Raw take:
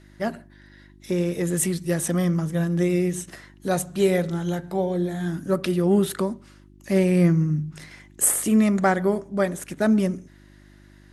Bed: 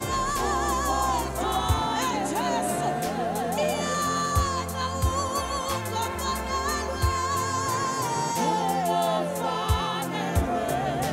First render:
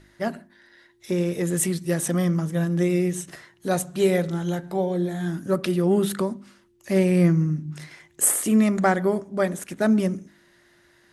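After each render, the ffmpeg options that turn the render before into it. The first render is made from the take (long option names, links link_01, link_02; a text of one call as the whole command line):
ffmpeg -i in.wav -af "bandreject=frequency=50:width_type=h:width=4,bandreject=frequency=100:width_type=h:width=4,bandreject=frequency=150:width_type=h:width=4,bandreject=frequency=200:width_type=h:width=4,bandreject=frequency=250:width_type=h:width=4,bandreject=frequency=300:width_type=h:width=4" out.wav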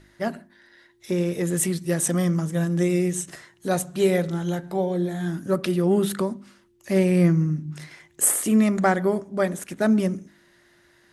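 ffmpeg -i in.wav -filter_complex "[0:a]asettb=1/sr,asplit=3[link_01][link_02][link_03];[link_01]atrim=end=2.004[link_04];[link_02]atrim=start=2:end=3.67,asetpts=PTS-STARTPTS,afade=type=in:duration=0.004:curve=qsin,afade=type=out:start_time=1.666:duration=0.004:curve=qsin,equalizer=frequency=7700:width=1.5:gain=5.5[link_05];[link_03]atrim=start=3.666[link_06];[link_04][link_05]acrossfade=duration=0.004:curve1=hsin:curve2=qsin[link_07];[link_07][link_06]acrossfade=duration=0.004:curve1=qsin:curve2=hsin" out.wav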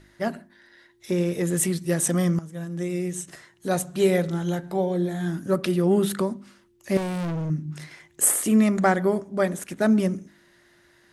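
ffmpeg -i in.wav -filter_complex "[0:a]asettb=1/sr,asplit=3[link_01][link_02][link_03];[link_01]atrim=end=6.974[link_04];[link_02]atrim=start=6.97:end=7.5,asetpts=PTS-STARTPTS,afade=type=in:duration=0.004:curve=qsin,afade=type=out:start_time=0.526:duration=0.004:curve=qsin,volume=26.5dB,asoftclip=hard,volume=-26.5dB[link_05];[link_03]atrim=start=7.496[link_06];[link_04][link_05]acrossfade=duration=0.004:curve1=hsin:curve2=qsin[link_07];[link_07][link_06]acrossfade=duration=0.004:curve1=qsin:curve2=hsin,asplit=2[link_08][link_09];[link_08]atrim=end=2.39,asetpts=PTS-STARTPTS,afade=type=out:start_time=2.386:duration=0.004:curve=hsin:silence=0.211349[link_10];[link_09]atrim=start=2.39,asetpts=PTS-STARTPTS,afade=type=in:duration=1.53:silence=0.211349[link_11];[link_10][link_11]concat=n=2:v=0:a=1" out.wav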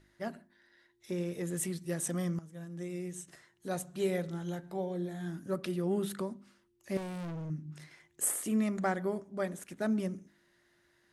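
ffmpeg -i in.wav -af "volume=-11.5dB" out.wav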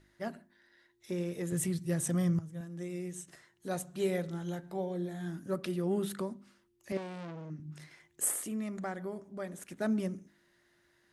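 ffmpeg -i in.wav -filter_complex "[0:a]asettb=1/sr,asplit=3[link_01][link_02][link_03];[link_01]atrim=end=1.524[link_04];[link_02]atrim=start=1.52:end=2.61,asetpts=PTS-STARTPTS,afade=type=in:duration=0.004:curve=qsin,afade=type=out:start_time=1.086:duration=0.004:curve=qsin,equalizer=frequency=110:width=1.5:gain=14.5[link_05];[link_03]atrim=start=2.606[link_06];[link_04][link_05]acrossfade=duration=0.004:curve1=hsin:curve2=qsin[link_07];[link_07][link_06]acrossfade=duration=0.004:curve1=qsin:curve2=hsin,asettb=1/sr,asplit=3[link_08][link_09][link_10];[link_08]atrim=end=6.924[link_11];[link_09]atrim=start=6.92:end=7.6,asetpts=PTS-STARTPTS,afade=type=in:duration=0.004:curve=qsin,afade=type=out:start_time=0.676:duration=0.004:curve=qsin,highpass=210,lowpass=5500[link_12];[link_10]atrim=start=7.596[link_13];[link_11][link_12]acrossfade=duration=0.004:curve1=hsin:curve2=qsin[link_14];[link_14][link_13]acrossfade=duration=0.004:curve1=qsin:curve2=hsin,asettb=1/sr,asplit=3[link_15][link_16][link_17];[link_15]atrim=end=8.444[link_18];[link_16]atrim=start=8.44:end=9.62,asetpts=PTS-STARTPTS,afade=type=in:duration=0.004:curve=qsin,afade=type=out:start_time=1.176:duration=0.004:curve=qsin,acompressor=threshold=-45dB:ratio=1.5:attack=3.2:release=140:knee=1:detection=peak[link_19];[link_17]atrim=start=9.616[link_20];[link_18][link_19]acrossfade=duration=0.004:curve1=hsin:curve2=qsin[link_21];[link_21][link_20]acrossfade=duration=0.004:curve1=qsin:curve2=hsin" out.wav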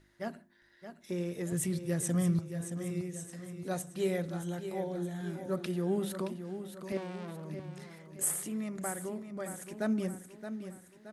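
ffmpeg -i in.wav -af "aecho=1:1:622|1244|1866|2488|3110:0.335|0.157|0.074|0.0348|0.0163" out.wav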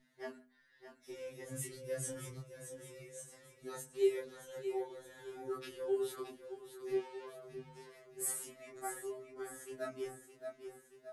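ffmpeg -i in.wav -af "flanger=delay=20:depth=2.6:speed=0.26,afftfilt=real='re*2.45*eq(mod(b,6),0)':imag='im*2.45*eq(mod(b,6),0)':win_size=2048:overlap=0.75" out.wav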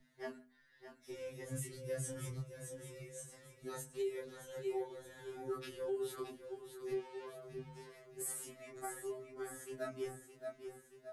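ffmpeg -i in.wav -filter_complex "[0:a]acrossover=split=160|490|5200[link_01][link_02][link_03][link_04];[link_01]acontrast=72[link_05];[link_05][link_02][link_03][link_04]amix=inputs=4:normalize=0,alimiter=level_in=7dB:limit=-24dB:level=0:latency=1:release=237,volume=-7dB" out.wav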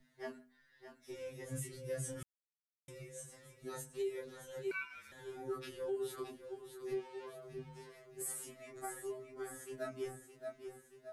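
ffmpeg -i in.wav -filter_complex "[0:a]asettb=1/sr,asplit=3[link_01][link_02][link_03];[link_01]atrim=end=4.714[link_04];[link_02]atrim=start=4.71:end=5.12,asetpts=PTS-STARTPTS,afade=type=in:duration=0.004:curve=qsin,afade=type=out:start_time=0.406:duration=0.004:curve=qsin,aeval=exprs='val(0)*sin(2*PI*1900*n/s)':channel_layout=same[link_05];[link_03]atrim=start=5.116[link_06];[link_04][link_05]acrossfade=duration=0.004:curve1=hsin:curve2=qsin[link_07];[link_07][link_06]acrossfade=duration=0.004:curve1=qsin:curve2=hsin,asplit=3[link_08][link_09][link_10];[link_08]atrim=end=2.23,asetpts=PTS-STARTPTS,afade=type=out:start_time=2.226:duration=0.004:curve=hsin[link_11];[link_09]atrim=start=2.23:end=2.88,asetpts=PTS-STARTPTS,volume=0[link_12];[link_10]atrim=start=2.88,asetpts=PTS-STARTPTS,afade=type=in:duration=0.004:curve=hsin[link_13];[link_11][link_12][link_13]concat=n=3:v=0:a=1" out.wav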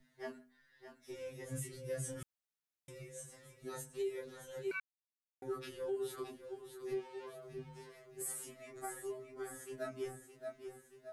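ffmpeg -i in.wav -filter_complex "[0:a]asplit=3[link_01][link_02][link_03];[link_01]atrim=end=4.8,asetpts=PTS-STARTPTS,afade=type=out:start_time=4.796:duration=0.004:curve=hsin[link_04];[link_02]atrim=start=4.8:end=5.42,asetpts=PTS-STARTPTS,volume=0[link_05];[link_03]atrim=start=5.42,asetpts=PTS-STARTPTS,afade=type=in:duration=0.004:curve=hsin[link_06];[link_04][link_05][link_06]concat=n=3:v=0:a=1" out.wav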